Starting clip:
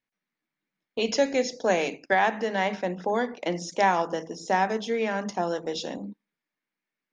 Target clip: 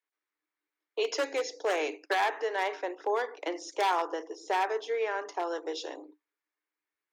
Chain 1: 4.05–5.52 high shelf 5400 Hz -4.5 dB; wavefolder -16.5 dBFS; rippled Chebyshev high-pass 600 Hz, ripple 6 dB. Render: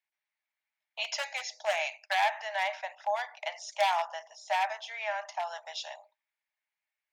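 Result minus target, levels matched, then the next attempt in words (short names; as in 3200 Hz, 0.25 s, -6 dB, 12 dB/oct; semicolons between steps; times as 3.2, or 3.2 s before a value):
500 Hz band -4.5 dB
4.05–5.52 high shelf 5400 Hz -4.5 dB; wavefolder -16.5 dBFS; rippled Chebyshev high-pass 290 Hz, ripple 6 dB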